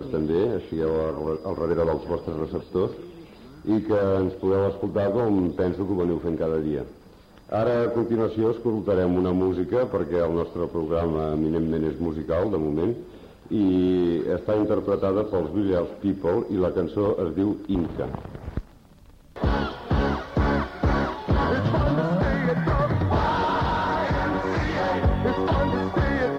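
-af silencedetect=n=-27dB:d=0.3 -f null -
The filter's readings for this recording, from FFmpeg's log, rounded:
silence_start: 2.91
silence_end: 3.67 | silence_duration: 0.77
silence_start: 6.82
silence_end: 7.52 | silence_duration: 0.70
silence_start: 12.99
silence_end: 13.51 | silence_duration: 0.52
silence_start: 18.59
silence_end: 19.38 | silence_duration: 0.78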